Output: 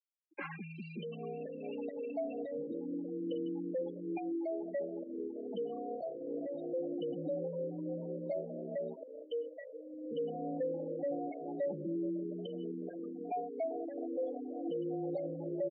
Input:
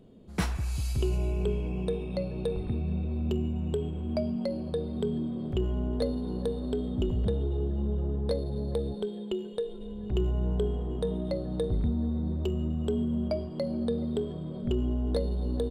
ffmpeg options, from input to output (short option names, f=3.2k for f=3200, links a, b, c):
-filter_complex "[0:a]lowshelf=f=360:g=-7.5,asplit=2[a][b];[b]adelay=200,highpass=300,lowpass=3.4k,asoftclip=type=hard:threshold=-29.5dB,volume=-27dB[c];[a][c]amix=inputs=2:normalize=0,adynamicequalizer=threshold=0.00126:dfrequency=2100:dqfactor=1.2:tfrequency=2100:tqfactor=1.2:attack=5:release=100:ratio=0.375:range=3.5:mode=boostabove:tftype=bell,alimiter=level_in=3dB:limit=-24dB:level=0:latency=1:release=74,volume=-3dB,afreqshift=220,acrossover=split=300[d][e];[d]acrusher=bits=4:mix=0:aa=0.000001[f];[e]asoftclip=type=hard:threshold=-35.5dB[g];[f][g]amix=inputs=2:normalize=0,afftfilt=real='re*gte(hypot(re,im),0.02)':imag='im*gte(hypot(re,im),0.02)':win_size=1024:overlap=0.75,highpass=f=340:t=q:w=0.5412,highpass=f=340:t=q:w=1.307,lowpass=f=3.2k:t=q:w=0.5176,lowpass=f=3.2k:t=q:w=0.7071,lowpass=f=3.2k:t=q:w=1.932,afreqshift=-120,asplit=2[h][i];[i]adelay=3.3,afreqshift=0.26[j];[h][j]amix=inputs=2:normalize=1,volume=5.5dB"